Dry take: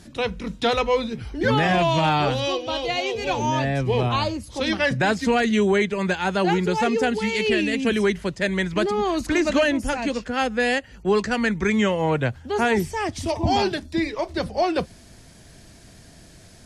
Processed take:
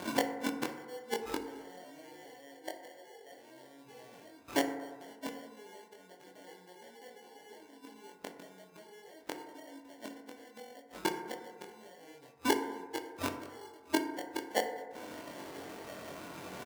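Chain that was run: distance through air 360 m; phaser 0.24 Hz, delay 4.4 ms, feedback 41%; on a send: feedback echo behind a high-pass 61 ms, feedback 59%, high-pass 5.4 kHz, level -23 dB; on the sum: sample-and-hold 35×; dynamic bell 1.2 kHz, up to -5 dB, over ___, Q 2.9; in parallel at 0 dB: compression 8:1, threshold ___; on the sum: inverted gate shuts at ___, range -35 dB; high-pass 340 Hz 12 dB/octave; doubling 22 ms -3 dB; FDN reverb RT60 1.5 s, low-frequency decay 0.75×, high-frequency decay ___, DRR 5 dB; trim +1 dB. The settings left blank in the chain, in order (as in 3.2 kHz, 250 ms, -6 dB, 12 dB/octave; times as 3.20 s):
-43 dBFS, -29 dBFS, -17 dBFS, 0.3×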